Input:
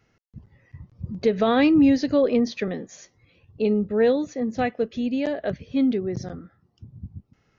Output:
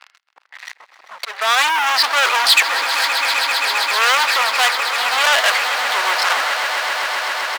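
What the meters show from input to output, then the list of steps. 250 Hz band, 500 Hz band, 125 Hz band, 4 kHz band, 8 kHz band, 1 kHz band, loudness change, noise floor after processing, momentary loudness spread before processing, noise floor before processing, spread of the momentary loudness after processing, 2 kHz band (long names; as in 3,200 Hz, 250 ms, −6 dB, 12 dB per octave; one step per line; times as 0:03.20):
below −25 dB, −4.5 dB, below −30 dB, +23.5 dB, can't be measured, +16.0 dB, +7.5 dB, −58 dBFS, 21 LU, −67 dBFS, 7 LU, +21.0 dB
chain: downsampling to 11,025 Hz
in parallel at −2 dB: output level in coarse steps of 21 dB
on the sum: high-frequency loss of the air 88 metres
reversed playback
downward compressor 12 to 1, threshold −27 dBFS, peak gain reduction 16.5 dB
reversed playback
volume swells 535 ms
leveller curve on the samples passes 5
high-pass filter 980 Hz 24 dB per octave
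echo that builds up and dies away 131 ms, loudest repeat 8, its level −14 dB
boost into a limiter +19 dB
saturating transformer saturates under 3,100 Hz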